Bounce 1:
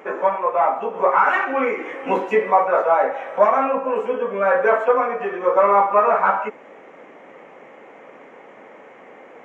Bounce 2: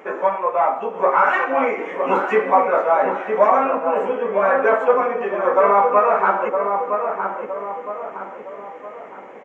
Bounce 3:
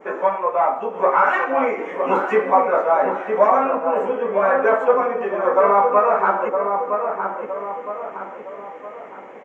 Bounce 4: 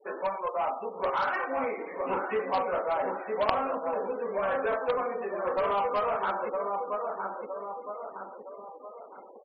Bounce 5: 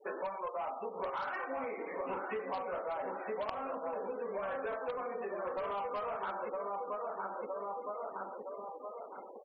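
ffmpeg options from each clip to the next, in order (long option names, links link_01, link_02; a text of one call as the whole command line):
ffmpeg -i in.wav -filter_complex "[0:a]asplit=2[link_01][link_02];[link_02]adelay=963,lowpass=frequency=1500:poles=1,volume=-5dB,asplit=2[link_03][link_04];[link_04]adelay=963,lowpass=frequency=1500:poles=1,volume=0.49,asplit=2[link_05][link_06];[link_06]adelay=963,lowpass=frequency=1500:poles=1,volume=0.49,asplit=2[link_07][link_08];[link_08]adelay=963,lowpass=frequency=1500:poles=1,volume=0.49,asplit=2[link_09][link_10];[link_10]adelay=963,lowpass=frequency=1500:poles=1,volume=0.49,asplit=2[link_11][link_12];[link_12]adelay=963,lowpass=frequency=1500:poles=1,volume=0.49[link_13];[link_01][link_03][link_05][link_07][link_09][link_11][link_13]amix=inputs=7:normalize=0" out.wav
ffmpeg -i in.wav -af "adynamicequalizer=threshold=0.0178:dfrequency=2700:dqfactor=1:tfrequency=2700:tqfactor=1:attack=5:release=100:ratio=0.375:range=2:mode=cutabove:tftype=bell" out.wav
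ffmpeg -i in.wav -af "aeval=exprs='0.841*(cos(1*acos(clip(val(0)/0.841,-1,1)))-cos(1*PI/2))+0.376*(cos(3*acos(clip(val(0)/0.841,-1,1)))-cos(3*PI/2))+0.15*(cos(5*acos(clip(val(0)/0.841,-1,1)))-cos(5*PI/2))':channel_layout=same,afftfilt=real='re*gte(hypot(re,im),0.0126)':imag='im*gte(hypot(re,im),0.0126)':win_size=1024:overlap=0.75,volume=-4.5dB" out.wav
ffmpeg -i in.wav -af "acompressor=threshold=-36dB:ratio=6" out.wav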